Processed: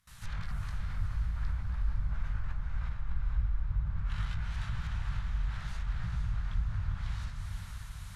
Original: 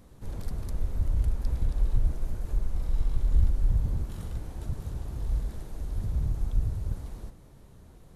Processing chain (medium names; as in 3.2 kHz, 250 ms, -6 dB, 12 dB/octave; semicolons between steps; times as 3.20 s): chorus 0.66 Hz, delay 17 ms, depth 4.5 ms; gate with hold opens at -47 dBFS; FFT filter 170 Hz 0 dB, 340 Hz -24 dB, 1.4 kHz +14 dB; in parallel at -2.5 dB: compressor with a negative ratio -34 dBFS, ratio -0.5; on the sum: low-pass that closes with the level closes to 890 Hz, closed at -22 dBFS; on a send: echo that smears into a reverb 472 ms, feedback 58%, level -5 dB; on the sum: trim -5.5 dB